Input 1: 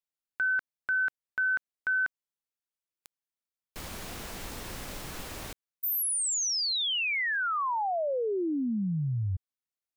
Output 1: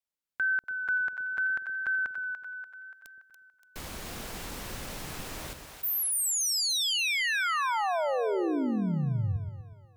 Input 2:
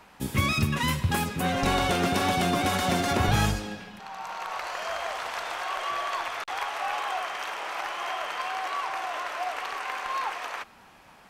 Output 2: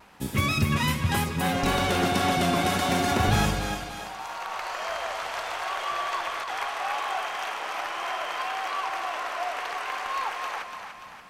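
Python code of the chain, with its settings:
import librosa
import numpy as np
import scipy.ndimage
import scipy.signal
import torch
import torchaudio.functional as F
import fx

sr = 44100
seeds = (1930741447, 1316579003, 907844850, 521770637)

y = fx.echo_split(x, sr, split_hz=550.0, low_ms=121, high_ms=288, feedback_pct=52, wet_db=-7)
y = fx.vibrato(y, sr, rate_hz=0.72, depth_cents=21.0)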